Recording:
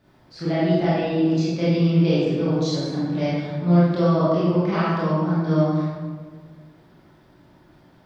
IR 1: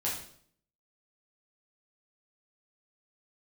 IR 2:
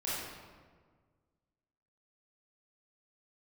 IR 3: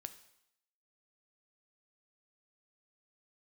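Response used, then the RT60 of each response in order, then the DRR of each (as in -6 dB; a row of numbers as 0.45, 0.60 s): 2; 0.60, 1.6, 0.80 s; -6.5, -9.5, 9.5 dB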